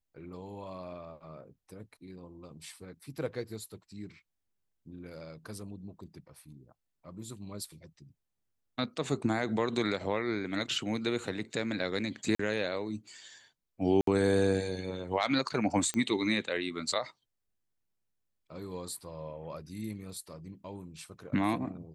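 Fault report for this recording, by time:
12.35–12.39 gap 44 ms
14.01–14.07 gap 63 ms
15.94 pop -19 dBFS

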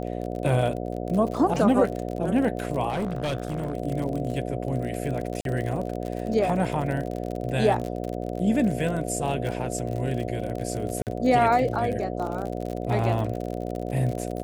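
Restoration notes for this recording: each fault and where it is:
buzz 60 Hz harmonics 12 -31 dBFS
crackle 46/s -30 dBFS
2.89–3.75 clipped -23 dBFS
5.41–5.45 gap 42 ms
11.02–11.07 gap 48 ms

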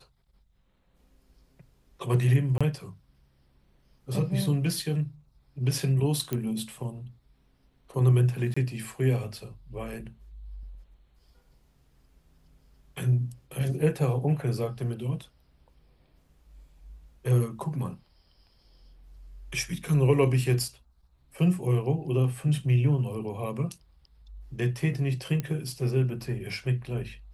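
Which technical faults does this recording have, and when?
2.58–2.61 gap 26 ms
6.33 pop -15 dBFS
8.54–8.56 gap 25 ms
25.4 pop -17 dBFS

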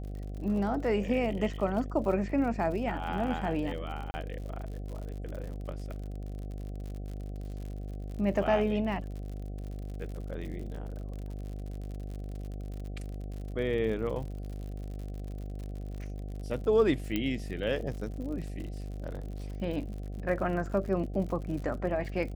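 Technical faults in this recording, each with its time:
buzz 50 Hz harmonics 15 -38 dBFS
crackle 69/s -39 dBFS
4.11–4.14 gap 30 ms
17.16 pop -17 dBFS

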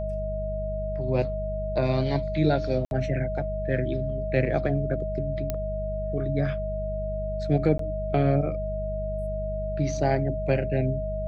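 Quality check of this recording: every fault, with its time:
hum 50 Hz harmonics 4 -32 dBFS
tone 630 Hz -30 dBFS
2.85–2.91 gap 61 ms
5.5 pop -14 dBFS
7.78–7.79 gap 13 ms

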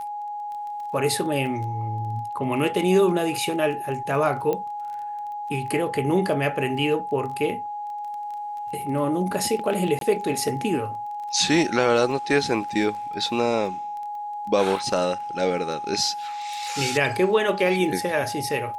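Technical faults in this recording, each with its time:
crackle 17/s -33 dBFS
tone 830 Hz -29 dBFS
4.53 pop -14 dBFS
9.99–10.01 gap 22 ms

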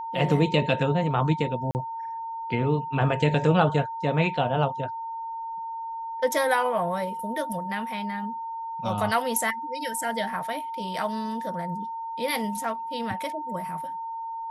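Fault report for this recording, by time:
tone 910 Hz -31 dBFS
1.71–1.75 gap 39 ms

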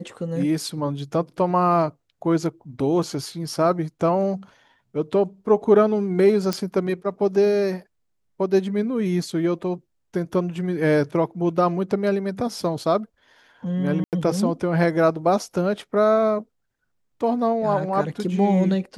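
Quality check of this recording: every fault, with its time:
6.53 pop -10 dBFS
14.04–14.13 gap 88 ms

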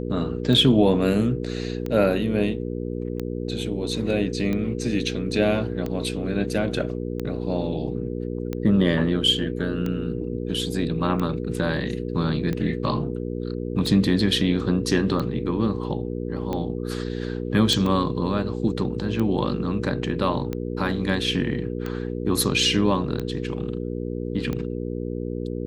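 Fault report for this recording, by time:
hum 60 Hz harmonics 8 -29 dBFS
tick 45 rpm -16 dBFS
17.73 pop

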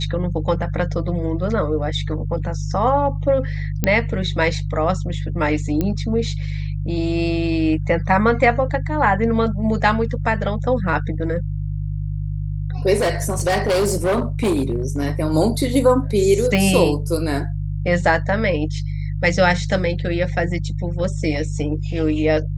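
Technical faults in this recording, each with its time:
hum 50 Hz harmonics 3 -24 dBFS
3.84 pop -4 dBFS
5.81 pop -9 dBFS
12.96–15.08 clipped -14.5 dBFS
16.55 pop -8 dBFS

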